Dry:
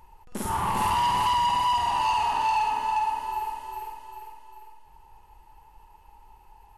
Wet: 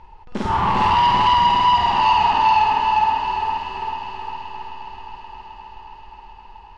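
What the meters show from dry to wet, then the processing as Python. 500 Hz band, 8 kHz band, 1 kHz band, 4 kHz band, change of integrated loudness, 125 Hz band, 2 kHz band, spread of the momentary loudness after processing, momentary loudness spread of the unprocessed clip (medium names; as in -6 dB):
+9.0 dB, no reading, +8.0 dB, +8.5 dB, +8.0 dB, +8.5 dB, +9.0 dB, 19 LU, 17 LU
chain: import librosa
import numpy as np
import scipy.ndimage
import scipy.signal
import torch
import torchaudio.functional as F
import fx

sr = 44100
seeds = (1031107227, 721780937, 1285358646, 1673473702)

p1 = scipy.signal.sosfilt(scipy.signal.butter(4, 4800.0, 'lowpass', fs=sr, output='sos'), x)
p2 = p1 + fx.echo_heads(p1, sr, ms=263, heads='first and third', feedback_pct=66, wet_db=-13, dry=0)
y = p2 * 10.0 ** (8.0 / 20.0)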